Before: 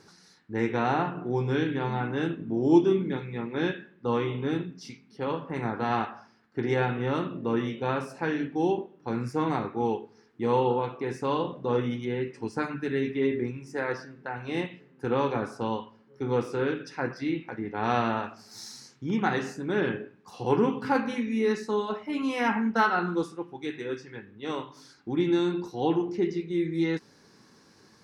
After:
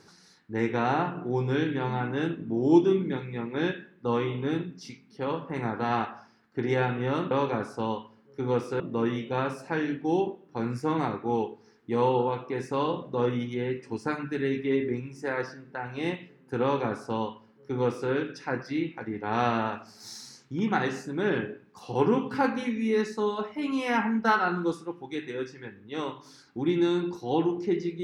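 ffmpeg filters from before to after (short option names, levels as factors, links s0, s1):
-filter_complex "[0:a]asplit=3[s0][s1][s2];[s0]atrim=end=7.312[s3];[s1]atrim=start=15.128:end=16.622[s4];[s2]atrim=start=7.308[s5];[s3][s4]acrossfade=d=0.004:c1=hsin:c2=hsin[s6];[s6][s5]acrossfade=d=0.004:c1=hsin:c2=hsin"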